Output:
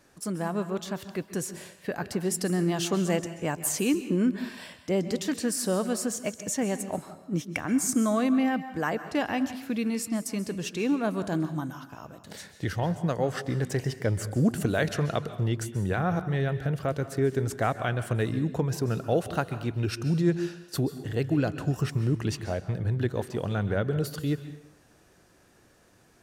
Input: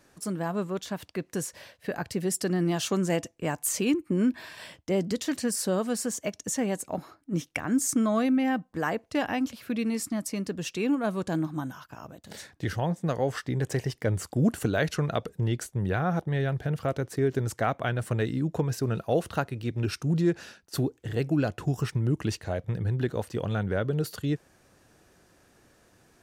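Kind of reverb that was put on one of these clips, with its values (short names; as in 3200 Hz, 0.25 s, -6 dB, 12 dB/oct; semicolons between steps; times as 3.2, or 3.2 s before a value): plate-style reverb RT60 0.71 s, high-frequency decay 0.9×, pre-delay 0.12 s, DRR 11.5 dB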